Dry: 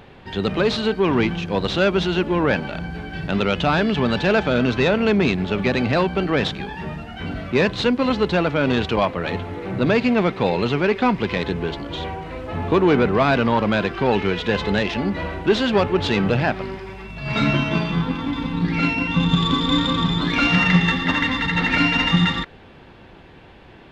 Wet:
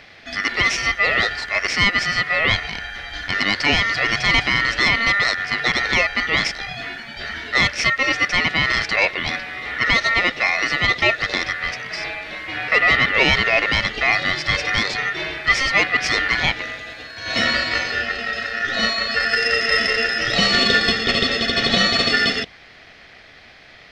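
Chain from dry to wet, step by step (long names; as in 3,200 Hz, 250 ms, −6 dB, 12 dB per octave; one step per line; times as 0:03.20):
ring modulation 1,600 Hz
flat-topped bell 1,200 Hz −10.5 dB 1.1 octaves
level +6.5 dB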